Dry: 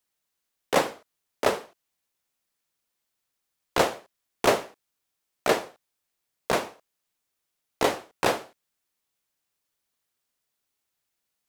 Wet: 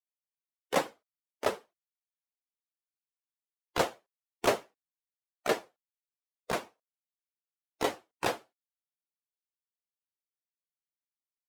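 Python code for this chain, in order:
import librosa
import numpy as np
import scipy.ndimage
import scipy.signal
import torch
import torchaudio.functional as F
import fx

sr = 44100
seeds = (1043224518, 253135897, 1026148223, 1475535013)

y = fx.bin_expand(x, sr, power=1.5)
y = y * 10.0 ** (-4.0 / 20.0)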